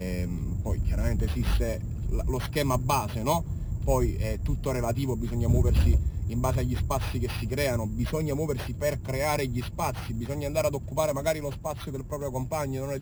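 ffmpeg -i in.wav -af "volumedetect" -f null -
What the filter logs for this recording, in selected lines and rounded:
mean_volume: -27.2 dB
max_volume: -12.3 dB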